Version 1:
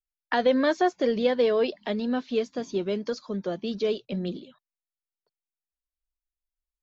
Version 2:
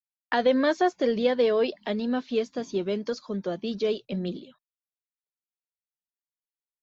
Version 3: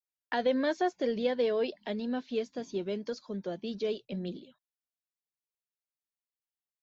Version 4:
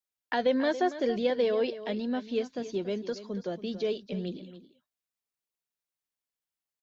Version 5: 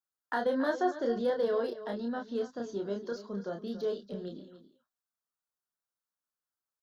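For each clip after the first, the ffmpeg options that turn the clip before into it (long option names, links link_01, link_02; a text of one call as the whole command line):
ffmpeg -i in.wav -af "agate=range=-33dB:threshold=-48dB:ratio=3:detection=peak" out.wav
ffmpeg -i in.wav -af "equalizer=frequency=1200:width_type=o:width=0.26:gain=-6.5,volume=-6dB" out.wav
ffmpeg -i in.wav -af "aecho=1:1:280:0.211,volume=2dB" out.wav
ffmpeg -i in.wav -filter_complex "[0:a]acrossover=split=2800[link_01][link_02];[link_01]lowpass=frequency=1400:width_type=q:width=2.6[link_03];[link_02]asoftclip=type=hard:threshold=-39.5dB[link_04];[link_03][link_04]amix=inputs=2:normalize=0,asplit=2[link_05][link_06];[link_06]adelay=30,volume=-4dB[link_07];[link_05][link_07]amix=inputs=2:normalize=0,volume=-5.5dB" out.wav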